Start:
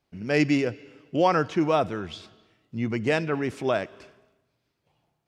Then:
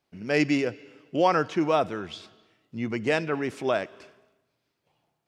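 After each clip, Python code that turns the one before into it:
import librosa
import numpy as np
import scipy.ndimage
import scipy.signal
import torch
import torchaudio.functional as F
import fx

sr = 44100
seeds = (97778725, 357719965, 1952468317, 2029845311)

y = fx.low_shelf(x, sr, hz=120.0, db=-10.5)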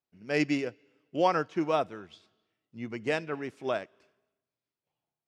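y = fx.upward_expand(x, sr, threshold_db=-45.0, expansion=1.5)
y = F.gain(torch.from_numpy(y), -2.5).numpy()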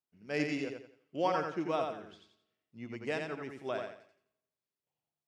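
y = fx.echo_feedback(x, sr, ms=87, feedback_pct=32, wet_db=-4.5)
y = F.gain(torch.from_numpy(y), -6.5).numpy()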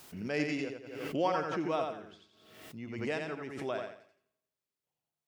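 y = fx.pre_swell(x, sr, db_per_s=53.0)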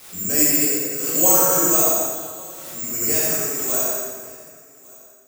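y = (np.kron(x[::6], np.eye(6)[0]) * 6)[:len(x)]
y = y + 10.0 ** (-23.5 / 20.0) * np.pad(y, (int(1154 * sr / 1000.0), 0))[:len(y)]
y = fx.rev_plate(y, sr, seeds[0], rt60_s=1.7, hf_ratio=0.75, predelay_ms=0, drr_db=-8.0)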